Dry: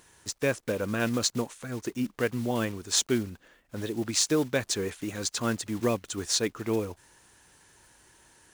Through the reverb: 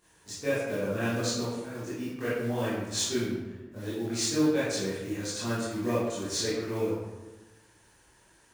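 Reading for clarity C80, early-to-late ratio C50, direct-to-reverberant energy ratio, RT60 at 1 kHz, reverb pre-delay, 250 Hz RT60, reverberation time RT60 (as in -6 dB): 2.0 dB, -2.0 dB, -12.5 dB, 1.1 s, 17 ms, 1.3 s, 1.2 s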